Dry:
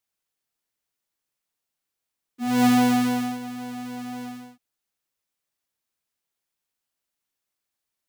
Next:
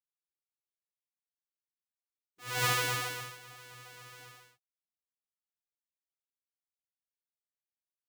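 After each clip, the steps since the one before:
gate on every frequency bin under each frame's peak −15 dB weak
expander for the loud parts 1.5 to 1, over −40 dBFS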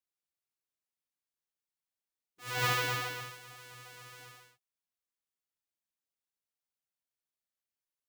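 dynamic equaliser 9,600 Hz, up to −7 dB, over −48 dBFS, Q 0.7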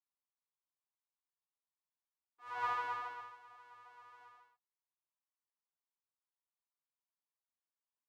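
frequency shifter −13 Hz
resonant band-pass 1,000 Hz, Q 3.7
level +2 dB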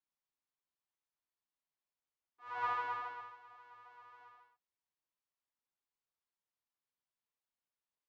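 high-frequency loss of the air 110 metres
level +1 dB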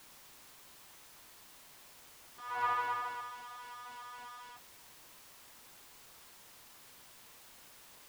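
converter with a step at zero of −49 dBFS
level +2.5 dB

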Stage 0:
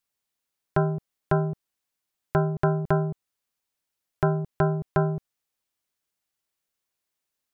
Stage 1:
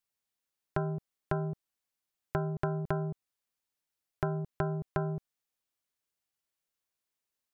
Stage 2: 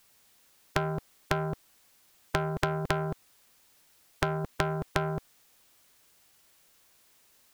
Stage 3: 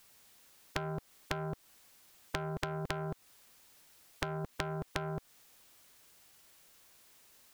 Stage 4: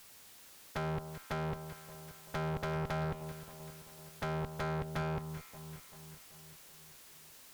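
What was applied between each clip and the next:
downward compressor, threshold −22 dBFS, peak gain reduction 5.5 dB; level −5 dB
in parallel at −6 dB: soft clipping −28 dBFS, distortion −11 dB; on the sum: every bin compressed towards the loudest bin 2 to 1; level +6 dB
downward compressor 3 to 1, threshold −37 dBFS, peak gain reduction 11 dB; level +1 dB
tube saturation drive 41 dB, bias 0.55; delay that swaps between a low-pass and a high-pass 193 ms, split 1,200 Hz, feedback 74%, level −10 dB; level +8.5 dB

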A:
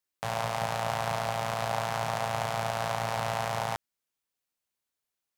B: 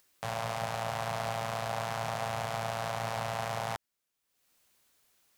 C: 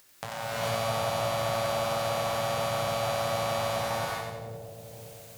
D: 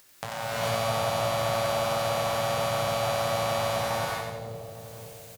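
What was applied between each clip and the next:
brickwall limiter −22.5 dBFS, peak gain reduction 9 dB; upward compression, threshold −58 dBFS; parametric band 880 Hz −2 dB 0.23 octaves; level +2.5 dB
downward compressor 2.5 to 1, threshold −48 dBFS, peak gain reduction 12.5 dB; on a send: echo with a time of its own for lows and highs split 560 Hz, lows 514 ms, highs 91 ms, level −4.5 dB; on the sum: reverb whose tail is shaped and stops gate 470 ms rising, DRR −8 dB; level +8.5 dB
single-tap delay 845 ms −23.5 dB; level +2 dB

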